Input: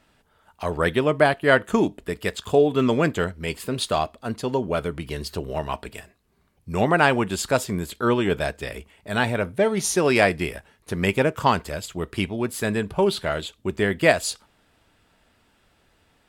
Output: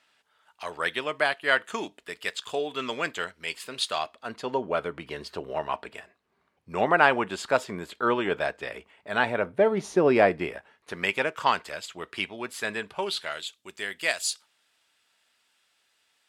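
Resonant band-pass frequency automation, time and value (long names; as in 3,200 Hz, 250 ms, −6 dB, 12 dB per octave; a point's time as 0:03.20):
resonant band-pass, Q 0.52
0:03.92 3,400 Hz
0:04.57 1,200 Hz
0:09.17 1,200 Hz
0:10.05 420 Hz
0:11.09 2,300 Hz
0:12.81 2,300 Hz
0:13.53 6,100 Hz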